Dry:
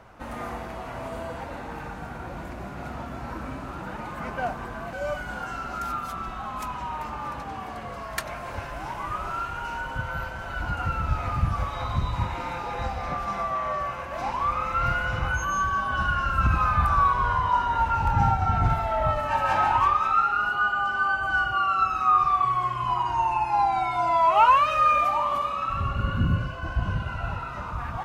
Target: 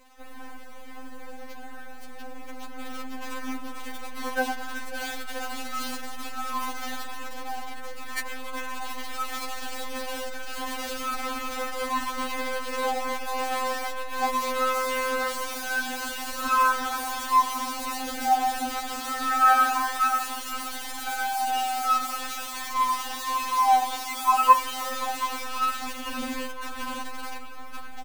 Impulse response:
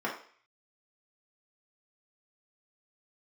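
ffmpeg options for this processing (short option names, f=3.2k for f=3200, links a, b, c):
-filter_complex "[0:a]dynaudnorm=f=500:g=9:m=4.5dB,adynamicequalizer=threshold=0.0112:dfrequency=2200:dqfactor=2.6:tfrequency=2200:tqfactor=2.6:attack=5:release=100:ratio=0.375:range=2:mode=cutabove:tftype=bell,bandreject=f=1.2k:w=13,acrusher=bits=5:dc=4:mix=0:aa=0.000001,aecho=1:1:525|1050|1575|2100|2625:0.112|0.0662|0.0391|0.023|0.0136,asplit=2[a][b];[1:a]atrim=start_sample=2205[c];[b][c]afir=irnorm=-1:irlink=0,volume=-22.5dB[d];[a][d]amix=inputs=2:normalize=0,afftfilt=real='re*3.46*eq(mod(b,12),0)':imag='im*3.46*eq(mod(b,12),0)':win_size=2048:overlap=0.75,volume=-3dB"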